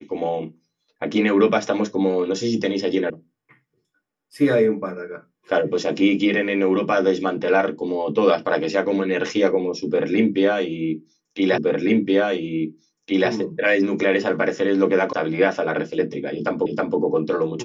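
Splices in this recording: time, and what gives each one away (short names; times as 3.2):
3.1 sound cut off
11.58 repeat of the last 1.72 s
15.13 sound cut off
16.66 repeat of the last 0.32 s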